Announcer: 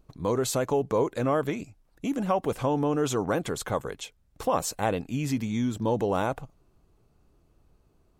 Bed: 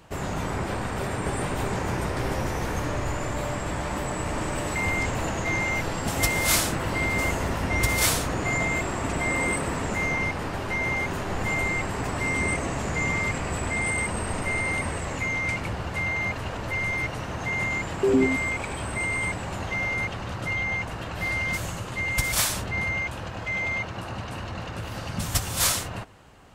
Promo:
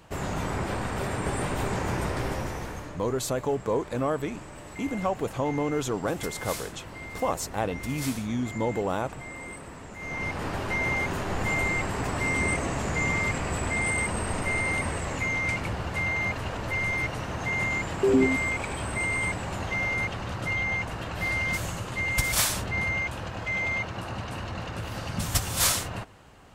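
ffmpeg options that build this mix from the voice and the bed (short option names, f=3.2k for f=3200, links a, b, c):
-filter_complex "[0:a]adelay=2750,volume=-2dB[a];[1:a]volume=13dB,afade=t=out:st=2.1:d=0.88:silence=0.211349,afade=t=in:st=9.98:d=0.5:silence=0.199526[b];[a][b]amix=inputs=2:normalize=0"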